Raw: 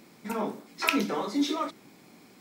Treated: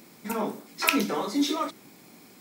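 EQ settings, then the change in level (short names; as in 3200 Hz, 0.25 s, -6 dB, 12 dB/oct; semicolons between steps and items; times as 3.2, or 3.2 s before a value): high shelf 8000 Hz +9.5 dB; +1.5 dB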